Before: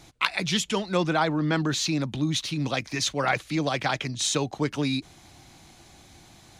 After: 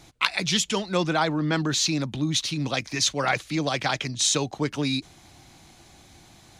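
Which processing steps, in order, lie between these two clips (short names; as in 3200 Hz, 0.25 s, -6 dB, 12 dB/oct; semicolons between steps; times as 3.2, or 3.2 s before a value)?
dynamic EQ 5900 Hz, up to +5 dB, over -40 dBFS, Q 0.73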